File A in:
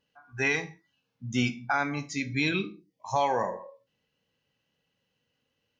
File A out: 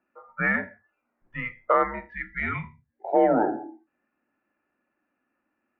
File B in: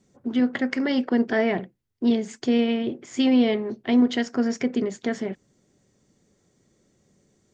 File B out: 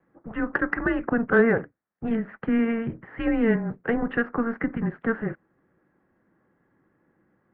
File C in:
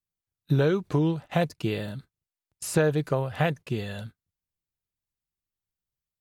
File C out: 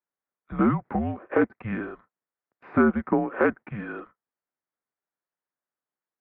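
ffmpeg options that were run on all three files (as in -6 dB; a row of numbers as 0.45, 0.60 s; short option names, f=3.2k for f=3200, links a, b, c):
-af "highpass=300,highpass=f=440:t=q:w=0.5412,highpass=f=440:t=q:w=1.307,lowpass=f=2.1k:t=q:w=0.5176,lowpass=f=2.1k:t=q:w=0.7071,lowpass=f=2.1k:t=q:w=1.932,afreqshift=-230,acontrast=82"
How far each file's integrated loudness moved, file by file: +3.5, -2.0, +1.5 LU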